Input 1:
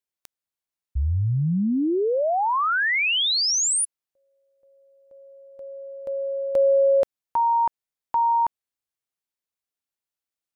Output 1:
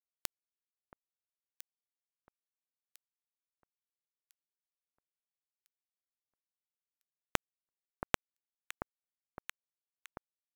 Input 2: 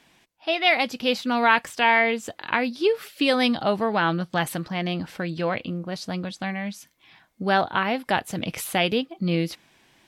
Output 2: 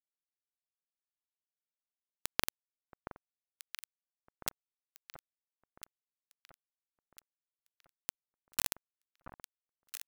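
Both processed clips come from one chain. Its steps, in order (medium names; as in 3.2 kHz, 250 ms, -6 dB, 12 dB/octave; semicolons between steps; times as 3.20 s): high-pass 99 Hz 24 dB/octave; treble shelf 9.1 kHz +11.5 dB; compression 16:1, threshold -28 dBFS; valve stage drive 33 dB, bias 0.55; bit crusher 5-bit; on a send: echo whose repeats swap between lows and highs 676 ms, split 1.4 kHz, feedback 62%, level -7.5 dB; on the sum: trim +17 dB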